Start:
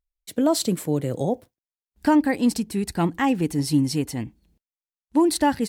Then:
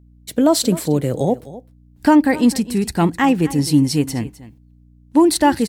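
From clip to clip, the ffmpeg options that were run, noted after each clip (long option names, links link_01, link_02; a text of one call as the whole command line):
ffmpeg -i in.wav -af "aeval=exprs='val(0)+0.00224*(sin(2*PI*60*n/s)+sin(2*PI*2*60*n/s)/2+sin(2*PI*3*60*n/s)/3+sin(2*PI*4*60*n/s)/4+sin(2*PI*5*60*n/s)/5)':channel_layout=same,aecho=1:1:257:0.141,volume=6dB" out.wav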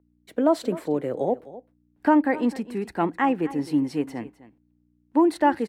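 ffmpeg -i in.wav -filter_complex "[0:a]acrossover=split=260 2400:gain=0.141 1 0.112[link_01][link_02][link_03];[link_01][link_02][link_03]amix=inputs=3:normalize=0,volume=-4dB" out.wav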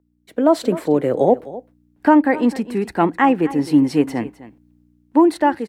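ffmpeg -i in.wav -af "dynaudnorm=framelen=120:gausssize=7:maxgain=11dB" out.wav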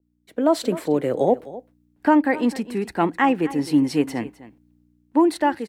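ffmpeg -i in.wav -af "adynamicequalizer=threshold=0.0251:dfrequency=2000:dqfactor=0.7:tfrequency=2000:tqfactor=0.7:attack=5:release=100:ratio=0.375:range=2.5:mode=boostabove:tftype=highshelf,volume=-4dB" out.wav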